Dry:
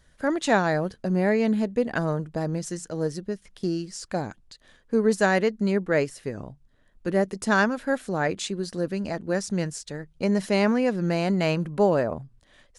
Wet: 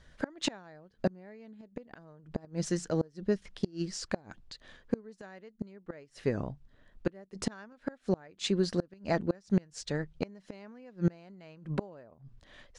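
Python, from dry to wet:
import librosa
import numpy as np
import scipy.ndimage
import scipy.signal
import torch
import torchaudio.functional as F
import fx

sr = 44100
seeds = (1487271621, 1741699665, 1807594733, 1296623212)

y = scipy.signal.sosfilt(scipy.signal.butter(2, 5600.0, 'lowpass', fs=sr, output='sos'), x)
y = fx.gate_flip(y, sr, shuts_db=-18.0, range_db=-30)
y = F.gain(torch.from_numpy(y), 2.0).numpy()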